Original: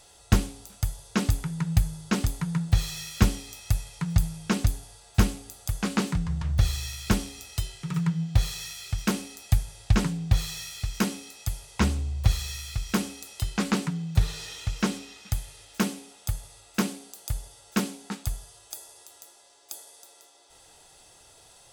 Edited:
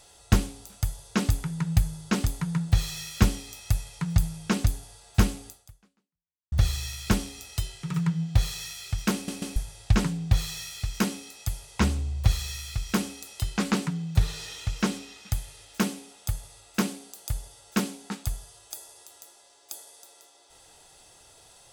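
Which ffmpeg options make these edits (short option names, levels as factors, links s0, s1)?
-filter_complex "[0:a]asplit=5[s0][s1][s2][s3][s4];[s0]atrim=end=6.52,asetpts=PTS-STARTPTS,afade=t=out:st=5.48:d=1.04:c=exp[s5];[s1]atrim=start=6.52:end=9.282,asetpts=PTS-STARTPTS,afade=t=in:d=0.004:c=hsin[s6];[s2]atrim=start=9.138:end=9.282[s7];[s3]atrim=start=9.138:end=9.282[s8];[s4]atrim=start=9.558[s9];[s5][s6]concat=n=2:v=0:a=1[s10];[s10][s7]acrossfade=d=0.004:c1=hsin:c2=hsin[s11];[s11][s8]acrossfade=d=0.004:c1=hsin:c2=hsin[s12];[s12][s9]acrossfade=d=0.004:c1=hsin:c2=hsin"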